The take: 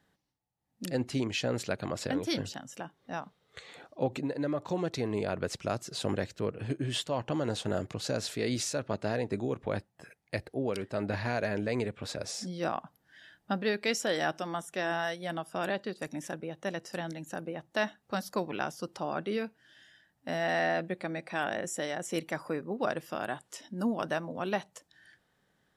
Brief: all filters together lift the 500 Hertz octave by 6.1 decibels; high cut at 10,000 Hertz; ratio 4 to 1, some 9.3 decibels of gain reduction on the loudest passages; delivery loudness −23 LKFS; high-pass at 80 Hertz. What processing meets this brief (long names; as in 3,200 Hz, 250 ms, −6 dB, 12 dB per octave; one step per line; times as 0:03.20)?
high-pass filter 80 Hz
low-pass filter 10,000 Hz
parametric band 500 Hz +7.5 dB
downward compressor 4 to 1, threshold −32 dBFS
level +14 dB